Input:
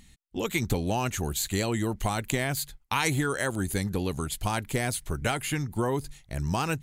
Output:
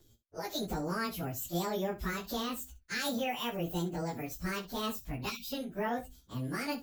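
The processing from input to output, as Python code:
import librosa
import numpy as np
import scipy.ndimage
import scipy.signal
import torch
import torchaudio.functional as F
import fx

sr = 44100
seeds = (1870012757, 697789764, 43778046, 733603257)

y = fx.pitch_bins(x, sr, semitones=10.0)
y = fx.spec_erase(y, sr, start_s=5.3, length_s=0.22, low_hz=250.0, high_hz=2200.0)
y = fx.room_early_taps(y, sr, ms=(17, 65), db=(-7.0, -14.5))
y = y * 10.0 ** (-5.0 / 20.0)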